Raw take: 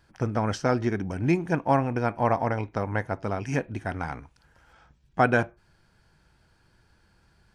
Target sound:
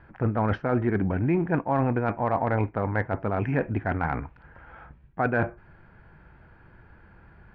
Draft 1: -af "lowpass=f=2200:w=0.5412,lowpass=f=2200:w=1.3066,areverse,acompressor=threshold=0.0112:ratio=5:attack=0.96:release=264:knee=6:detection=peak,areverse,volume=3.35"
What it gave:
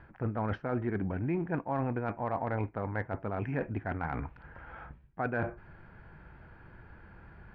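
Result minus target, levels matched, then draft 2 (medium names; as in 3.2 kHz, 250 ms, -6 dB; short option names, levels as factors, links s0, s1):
compression: peak gain reduction +8 dB
-af "lowpass=f=2200:w=0.5412,lowpass=f=2200:w=1.3066,areverse,acompressor=threshold=0.0355:ratio=5:attack=0.96:release=264:knee=6:detection=peak,areverse,volume=3.35"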